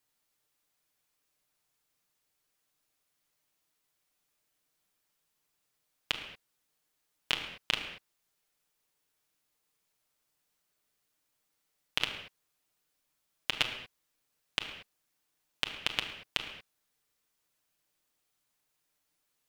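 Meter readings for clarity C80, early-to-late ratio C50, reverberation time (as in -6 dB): 8.5 dB, 7.0 dB, not exponential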